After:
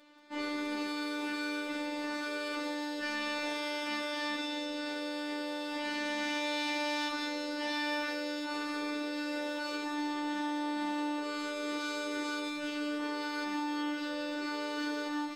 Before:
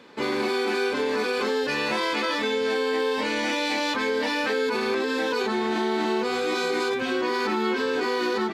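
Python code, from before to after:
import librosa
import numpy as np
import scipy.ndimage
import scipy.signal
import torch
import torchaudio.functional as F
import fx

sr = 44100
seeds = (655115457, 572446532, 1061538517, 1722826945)

y = fx.robotise(x, sr, hz=295.0)
y = fx.echo_wet_highpass(y, sr, ms=104, feedback_pct=72, hz=4300.0, wet_db=-3.0)
y = fx.stretch_vocoder(y, sr, factor=1.8)
y = y * librosa.db_to_amplitude(-7.5)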